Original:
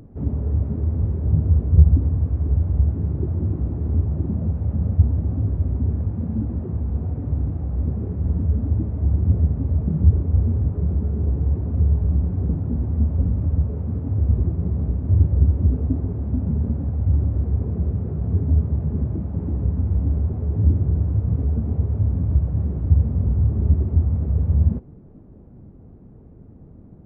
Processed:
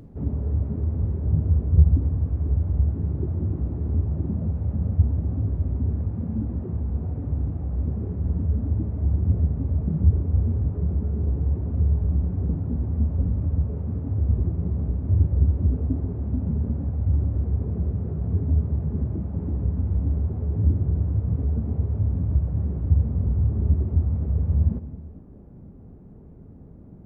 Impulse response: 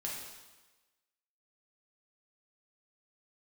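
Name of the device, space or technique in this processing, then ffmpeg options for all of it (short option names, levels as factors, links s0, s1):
ducked reverb: -filter_complex "[0:a]asplit=3[s0][s1][s2];[1:a]atrim=start_sample=2205[s3];[s1][s3]afir=irnorm=-1:irlink=0[s4];[s2]apad=whole_len=1193288[s5];[s4][s5]sidechaincompress=threshold=0.02:ratio=8:attack=16:release=101,volume=0.531[s6];[s0][s6]amix=inputs=2:normalize=0,volume=0.668"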